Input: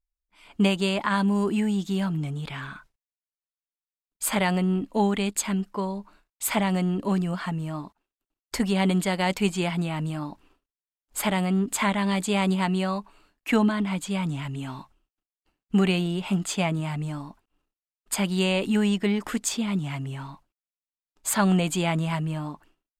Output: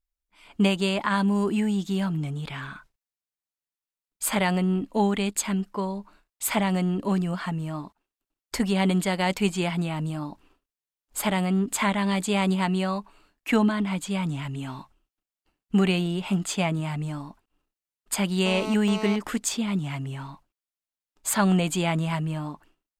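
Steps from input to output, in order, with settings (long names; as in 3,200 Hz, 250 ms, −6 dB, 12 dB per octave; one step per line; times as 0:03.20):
0:09.93–0:11.26: dynamic equaliser 2,000 Hz, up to −4 dB, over −49 dBFS, Q 1.2
0:18.46–0:19.16: phone interference −33 dBFS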